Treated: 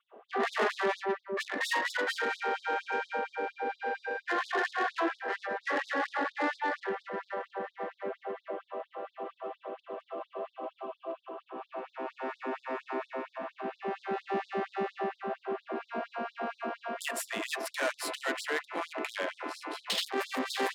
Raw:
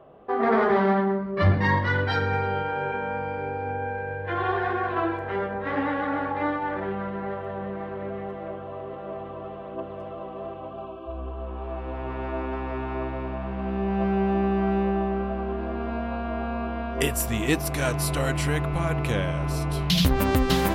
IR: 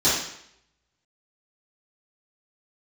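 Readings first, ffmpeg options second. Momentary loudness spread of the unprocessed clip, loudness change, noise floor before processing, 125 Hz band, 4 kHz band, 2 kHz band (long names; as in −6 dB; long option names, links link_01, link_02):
14 LU, −8.0 dB, −37 dBFS, below −30 dB, −5.0 dB, −3.0 dB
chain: -af "adynamicequalizer=threshold=0.00316:dfrequency=1800:dqfactor=6.1:tfrequency=1800:tqfactor=6.1:attack=5:release=100:ratio=0.375:range=4:mode=boostabove:tftype=bell,asoftclip=type=tanh:threshold=-22.5dB,bandreject=frequency=5900:width=15,adynamicsmooth=sensitivity=7:basefreq=4100,afftfilt=real='re*gte(b*sr/1024,210*pow(3600/210,0.5+0.5*sin(2*PI*4.3*pts/sr)))':imag='im*gte(b*sr/1024,210*pow(3600/210,0.5+0.5*sin(2*PI*4.3*pts/sr)))':win_size=1024:overlap=0.75"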